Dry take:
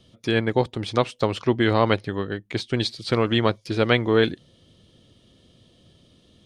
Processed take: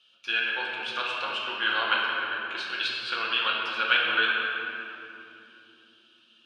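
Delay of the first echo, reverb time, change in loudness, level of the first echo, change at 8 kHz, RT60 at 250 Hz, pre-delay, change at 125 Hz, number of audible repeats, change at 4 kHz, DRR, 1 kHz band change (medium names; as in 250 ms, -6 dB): no echo, 3.0 s, -3.5 dB, no echo, no reading, 5.1 s, 3 ms, under -30 dB, no echo, +2.0 dB, -5.0 dB, -2.0 dB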